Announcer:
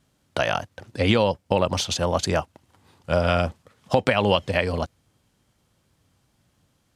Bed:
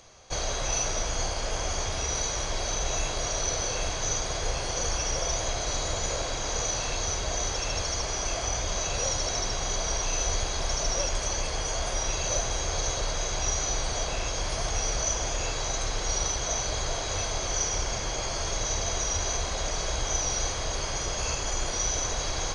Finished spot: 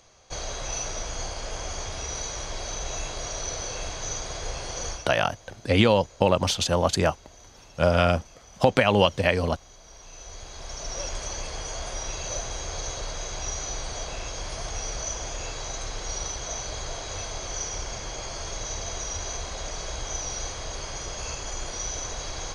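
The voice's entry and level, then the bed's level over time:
4.70 s, +0.5 dB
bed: 4.90 s -3.5 dB
5.17 s -21.5 dB
9.80 s -21.5 dB
11.06 s -4 dB

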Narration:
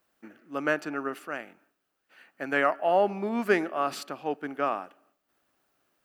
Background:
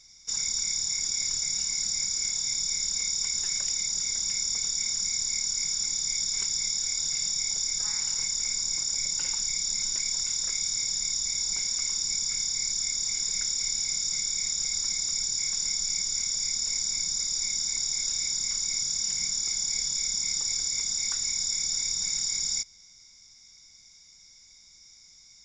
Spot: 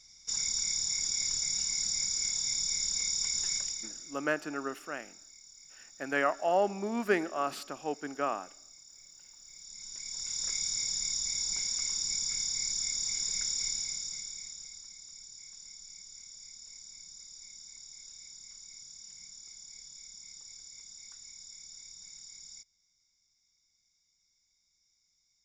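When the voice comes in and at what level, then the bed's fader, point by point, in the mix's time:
3.60 s, -4.0 dB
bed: 3.55 s -3 dB
4.30 s -25.5 dB
9.37 s -25.5 dB
10.47 s -4 dB
13.66 s -4 dB
14.90 s -20.5 dB

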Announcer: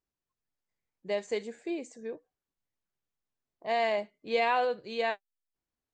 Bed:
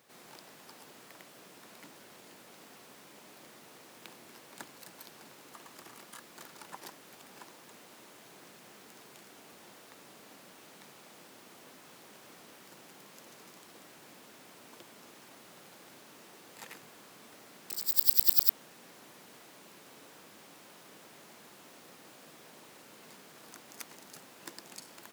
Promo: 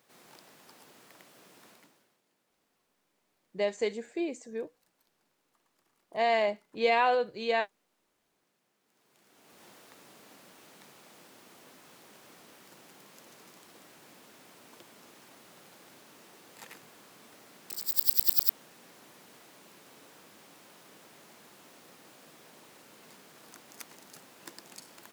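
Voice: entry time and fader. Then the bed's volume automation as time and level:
2.50 s, +2.0 dB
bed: 1.69 s -3 dB
2.22 s -22.5 dB
8.80 s -22.5 dB
9.63 s -1 dB

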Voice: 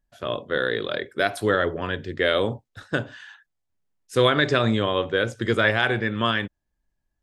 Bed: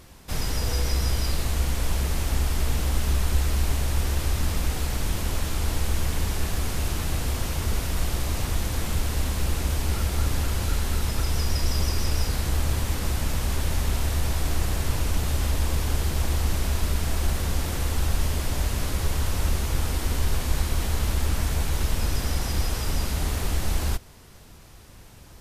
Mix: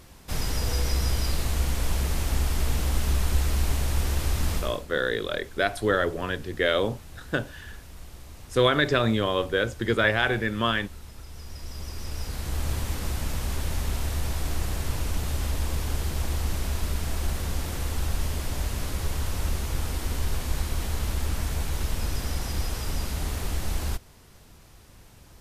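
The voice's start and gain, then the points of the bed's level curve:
4.40 s, -2.0 dB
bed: 4.56 s -1 dB
4.86 s -18 dB
11.28 s -18 dB
12.69 s -3.5 dB

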